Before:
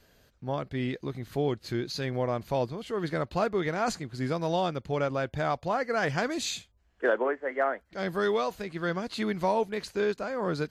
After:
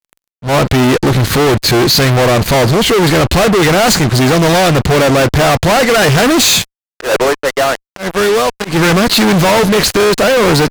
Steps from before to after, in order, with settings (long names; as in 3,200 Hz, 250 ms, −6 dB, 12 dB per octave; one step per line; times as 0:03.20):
0:07.16–0:08.65: power curve on the samples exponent 2
fuzz pedal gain 49 dB, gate −52 dBFS
volume swells 127 ms
level +5 dB